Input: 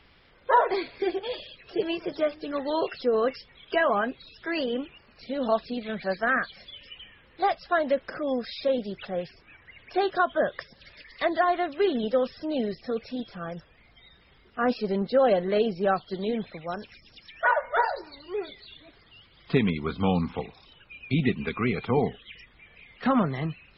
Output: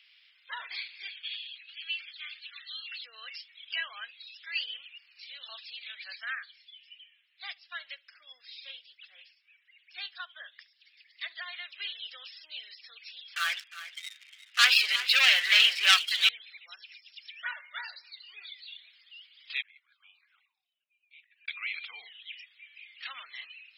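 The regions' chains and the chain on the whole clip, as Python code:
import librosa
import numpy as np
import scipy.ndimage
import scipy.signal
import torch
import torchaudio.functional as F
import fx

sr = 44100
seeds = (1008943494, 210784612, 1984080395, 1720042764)

y = fx.chain(x, sr, fx.cheby1_bandpass(low_hz=1200.0, high_hz=4400.0, order=5),
    fx.sustainer(db_per_s=130.0), at=(1.08, 3.04))
y = fx.chain(y, sr, fx.echo_feedback(ms=70, feedback_pct=29, wet_db=-19),
    fx.upward_expand(threshold_db=-40.0, expansion=1.5), at=(6.35, 11.46))
y = fx.chain(y, sr, fx.peak_eq(hz=1600.0, db=13.5, octaves=2.6),
    fx.leveller(passes=3),
    fx.echo_single(ms=357, db=-14.0), at=(13.36, 16.29))
y = fx.chain(y, sr, fx.high_shelf(hz=3800.0, db=7.0),
    fx.auto_wah(base_hz=560.0, top_hz=1700.0, q=21.0, full_db=-24.5, direction='up'),
    fx.over_compress(threshold_db=-56.0, ratio=-0.5), at=(19.62, 21.48))
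y = scipy.signal.sosfilt(scipy.signal.cheby1(3, 1.0, 2600.0, 'highpass', fs=sr, output='sos'), y)
y = fx.high_shelf(y, sr, hz=3400.0, db=-9.0)
y = F.gain(torch.from_numpy(y), 7.5).numpy()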